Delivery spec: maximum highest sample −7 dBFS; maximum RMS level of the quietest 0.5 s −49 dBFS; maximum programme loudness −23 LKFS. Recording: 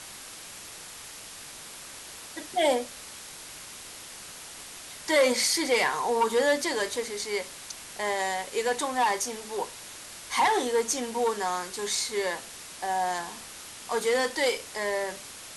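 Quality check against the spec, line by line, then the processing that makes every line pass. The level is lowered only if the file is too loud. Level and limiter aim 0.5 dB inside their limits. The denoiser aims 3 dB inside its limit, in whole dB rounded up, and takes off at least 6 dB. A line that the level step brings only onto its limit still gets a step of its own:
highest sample −12.0 dBFS: in spec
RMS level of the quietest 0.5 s −44 dBFS: out of spec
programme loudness −27.5 LKFS: in spec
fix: broadband denoise 8 dB, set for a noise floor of −44 dBFS

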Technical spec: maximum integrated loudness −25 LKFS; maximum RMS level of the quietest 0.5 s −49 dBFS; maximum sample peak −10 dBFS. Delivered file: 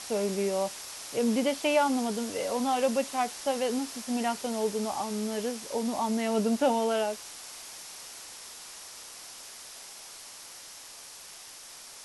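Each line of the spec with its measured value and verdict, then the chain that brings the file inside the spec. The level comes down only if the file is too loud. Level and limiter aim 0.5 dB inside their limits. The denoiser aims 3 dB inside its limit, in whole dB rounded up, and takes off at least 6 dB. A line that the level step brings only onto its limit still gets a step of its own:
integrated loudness −29.5 LKFS: in spec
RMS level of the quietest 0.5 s −47 dBFS: out of spec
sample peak −13.5 dBFS: in spec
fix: broadband denoise 6 dB, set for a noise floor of −47 dBFS

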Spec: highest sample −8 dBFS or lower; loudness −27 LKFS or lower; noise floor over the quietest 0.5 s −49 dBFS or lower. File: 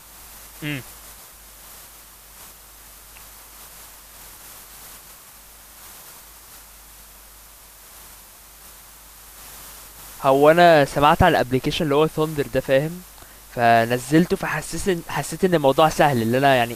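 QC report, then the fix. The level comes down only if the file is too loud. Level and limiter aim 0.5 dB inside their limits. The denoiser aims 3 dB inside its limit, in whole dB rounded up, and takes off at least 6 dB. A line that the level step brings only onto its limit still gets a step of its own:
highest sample −3.0 dBFS: out of spec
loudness −18.5 LKFS: out of spec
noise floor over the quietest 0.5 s −46 dBFS: out of spec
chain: level −9 dB

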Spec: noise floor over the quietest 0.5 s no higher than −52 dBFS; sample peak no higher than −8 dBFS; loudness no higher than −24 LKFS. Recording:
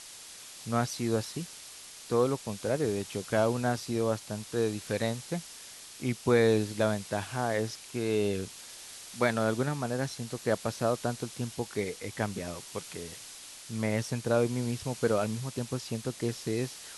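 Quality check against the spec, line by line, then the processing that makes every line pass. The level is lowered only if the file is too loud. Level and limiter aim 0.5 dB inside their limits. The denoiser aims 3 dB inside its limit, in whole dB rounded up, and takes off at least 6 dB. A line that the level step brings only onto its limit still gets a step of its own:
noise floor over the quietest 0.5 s −48 dBFS: out of spec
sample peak −12.5 dBFS: in spec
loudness −31.5 LKFS: in spec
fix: broadband denoise 7 dB, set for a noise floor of −48 dBFS

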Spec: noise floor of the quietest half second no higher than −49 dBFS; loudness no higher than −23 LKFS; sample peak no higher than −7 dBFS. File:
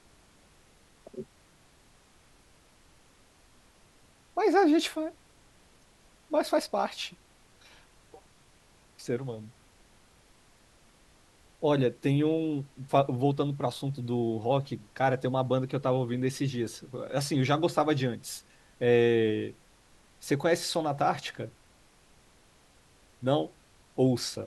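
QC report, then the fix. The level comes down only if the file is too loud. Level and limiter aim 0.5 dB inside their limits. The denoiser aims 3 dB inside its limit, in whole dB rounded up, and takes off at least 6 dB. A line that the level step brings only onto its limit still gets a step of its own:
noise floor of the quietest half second −61 dBFS: in spec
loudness −29.0 LKFS: in spec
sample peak −10.5 dBFS: in spec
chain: no processing needed

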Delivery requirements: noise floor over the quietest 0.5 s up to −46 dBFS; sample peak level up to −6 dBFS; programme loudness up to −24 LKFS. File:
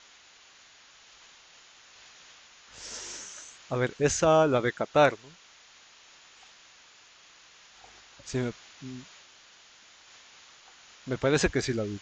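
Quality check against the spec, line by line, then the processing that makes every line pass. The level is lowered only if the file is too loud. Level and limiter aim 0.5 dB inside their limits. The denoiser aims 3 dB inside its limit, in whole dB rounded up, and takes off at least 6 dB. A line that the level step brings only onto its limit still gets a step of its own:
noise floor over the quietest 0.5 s −56 dBFS: in spec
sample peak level −7.5 dBFS: in spec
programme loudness −27.0 LKFS: in spec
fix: no processing needed

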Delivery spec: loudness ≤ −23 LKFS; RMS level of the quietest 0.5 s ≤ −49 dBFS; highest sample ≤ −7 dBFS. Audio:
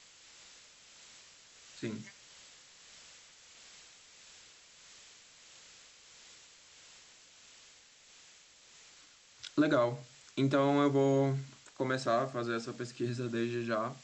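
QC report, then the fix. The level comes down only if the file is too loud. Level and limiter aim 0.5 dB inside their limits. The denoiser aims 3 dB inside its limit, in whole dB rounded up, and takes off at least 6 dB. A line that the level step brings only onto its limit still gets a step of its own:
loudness −32.5 LKFS: in spec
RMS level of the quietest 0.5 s −60 dBFS: in spec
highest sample −17.0 dBFS: in spec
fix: no processing needed

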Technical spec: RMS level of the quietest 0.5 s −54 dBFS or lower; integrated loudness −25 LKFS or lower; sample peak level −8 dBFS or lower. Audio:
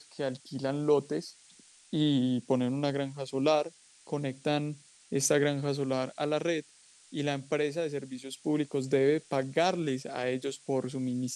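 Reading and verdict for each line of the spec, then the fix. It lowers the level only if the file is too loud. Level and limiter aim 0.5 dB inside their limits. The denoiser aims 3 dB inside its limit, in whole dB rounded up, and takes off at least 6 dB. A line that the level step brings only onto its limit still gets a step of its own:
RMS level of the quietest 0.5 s −59 dBFS: in spec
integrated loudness −31.0 LKFS: in spec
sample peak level −13.0 dBFS: in spec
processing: no processing needed

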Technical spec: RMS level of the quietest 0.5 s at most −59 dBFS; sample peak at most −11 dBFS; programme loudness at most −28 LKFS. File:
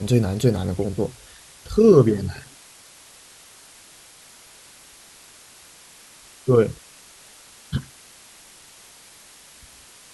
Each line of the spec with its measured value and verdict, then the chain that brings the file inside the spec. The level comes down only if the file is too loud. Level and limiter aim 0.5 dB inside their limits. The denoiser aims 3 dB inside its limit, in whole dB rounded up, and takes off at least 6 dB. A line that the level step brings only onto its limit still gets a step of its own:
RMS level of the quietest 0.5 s −48 dBFS: out of spec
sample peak −3.5 dBFS: out of spec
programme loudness −20.5 LKFS: out of spec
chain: broadband denoise 6 dB, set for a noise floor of −48 dBFS
level −8 dB

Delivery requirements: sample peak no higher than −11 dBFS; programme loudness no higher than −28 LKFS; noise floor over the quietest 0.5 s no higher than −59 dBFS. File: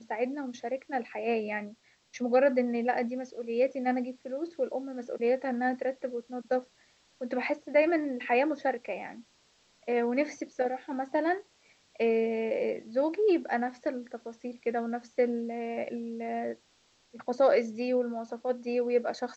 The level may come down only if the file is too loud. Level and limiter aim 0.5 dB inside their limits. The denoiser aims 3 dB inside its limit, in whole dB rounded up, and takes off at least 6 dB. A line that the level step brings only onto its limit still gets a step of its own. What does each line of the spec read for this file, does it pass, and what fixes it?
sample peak −13.0 dBFS: in spec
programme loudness −30.5 LKFS: in spec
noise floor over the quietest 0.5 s −67 dBFS: in spec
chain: no processing needed

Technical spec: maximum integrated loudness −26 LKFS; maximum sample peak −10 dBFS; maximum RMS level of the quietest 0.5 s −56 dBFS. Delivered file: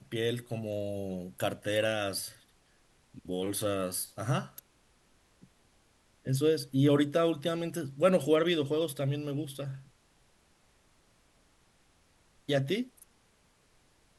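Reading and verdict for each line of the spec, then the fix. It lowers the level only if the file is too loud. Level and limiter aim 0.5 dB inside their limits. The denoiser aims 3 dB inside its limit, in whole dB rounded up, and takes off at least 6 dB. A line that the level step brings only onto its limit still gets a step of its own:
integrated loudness −31.0 LKFS: in spec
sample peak −13.0 dBFS: in spec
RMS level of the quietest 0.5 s −67 dBFS: in spec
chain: no processing needed

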